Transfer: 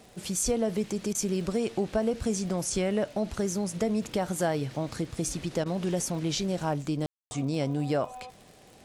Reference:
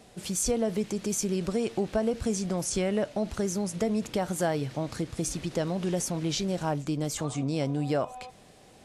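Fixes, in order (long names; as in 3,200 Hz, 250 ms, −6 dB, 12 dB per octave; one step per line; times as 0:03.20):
click removal
ambience match 0:07.06–0:07.31
repair the gap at 0:01.13/0:05.64, 17 ms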